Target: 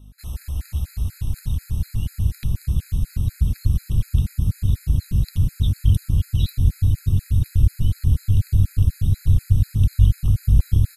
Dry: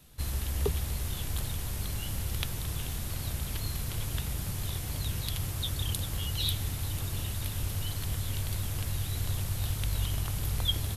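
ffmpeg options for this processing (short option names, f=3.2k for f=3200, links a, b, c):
-af "aeval=exprs='val(0)+0.00891*(sin(2*PI*50*n/s)+sin(2*PI*2*50*n/s)/2+sin(2*PI*3*50*n/s)/3+sin(2*PI*4*50*n/s)/4+sin(2*PI*5*50*n/s)/5)':c=same,asubboost=boost=12:cutoff=220,afftfilt=real='re*gt(sin(2*PI*4.1*pts/sr)*(1-2*mod(floor(b*sr/1024/1300),2)),0)':imag='im*gt(sin(2*PI*4.1*pts/sr)*(1-2*mod(floor(b*sr/1024/1300),2)),0)':win_size=1024:overlap=0.75,volume=-2dB"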